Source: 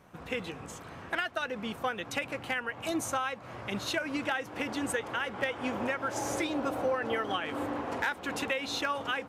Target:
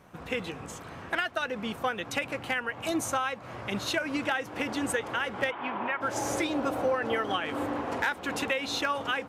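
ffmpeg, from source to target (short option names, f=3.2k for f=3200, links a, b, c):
-filter_complex "[0:a]asplit=3[a][b][c];[a]afade=t=out:st=5.5:d=0.02[d];[b]highpass=220,equalizer=f=270:t=q:w=4:g=-7,equalizer=f=500:t=q:w=4:g=-10,equalizer=f=990:t=q:w=4:g=6,lowpass=f=3.2k:w=0.5412,lowpass=f=3.2k:w=1.3066,afade=t=in:st=5.5:d=0.02,afade=t=out:st=6:d=0.02[e];[c]afade=t=in:st=6:d=0.02[f];[d][e][f]amix=inputs=3:normalize=0,volume=2.5dB"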